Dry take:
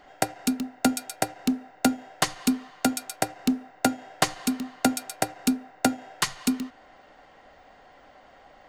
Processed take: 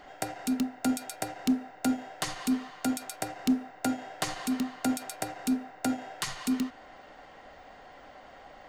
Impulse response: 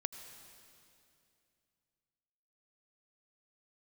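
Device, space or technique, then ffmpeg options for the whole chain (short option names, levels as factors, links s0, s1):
de-esser from a sidechain: -filter_complex "[0:a]asplit=2[s0][s1];[s1]highpass=6900,apad=whole_len=383212[s2];[s0][s2]sidechaincompress=threshold=0.0141:ratio=6:attack=3.6:release=52,volume=1.33"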